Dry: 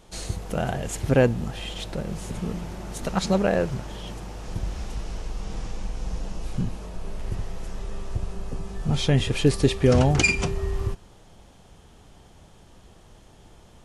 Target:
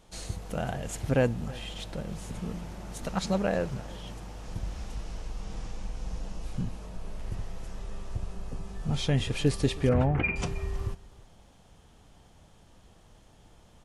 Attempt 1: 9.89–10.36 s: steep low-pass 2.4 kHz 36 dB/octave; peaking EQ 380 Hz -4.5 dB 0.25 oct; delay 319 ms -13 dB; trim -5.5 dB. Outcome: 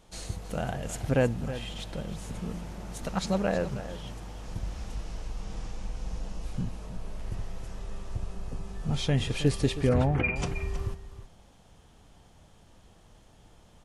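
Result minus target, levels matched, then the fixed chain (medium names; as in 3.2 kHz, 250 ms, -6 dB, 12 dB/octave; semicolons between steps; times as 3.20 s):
echo-to-direct +8.5 dB
9.89–10.36 s: steep low-pass 2.4 kHz 36 dB/octave; peaking EQ 380 Hz -4.5 dB 0.25 oct; delay 319 ms -21.5 dB; trim -5.5 dB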